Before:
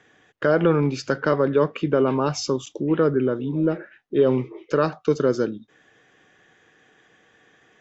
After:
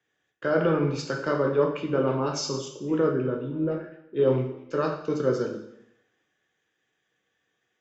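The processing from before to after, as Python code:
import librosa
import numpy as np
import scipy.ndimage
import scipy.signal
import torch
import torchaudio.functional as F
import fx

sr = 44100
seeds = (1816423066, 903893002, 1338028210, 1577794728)

y = fx.rev_plate(x, sr, seeds[0], rt60_s=0.94, hf_ratio=0.95, predelay_ms=0, drr_db=1.0)
y = fx.band_widen(y, sr, depth_pct=40)
y = F.gain(torch.from_numpy(y), -7.0).numpy()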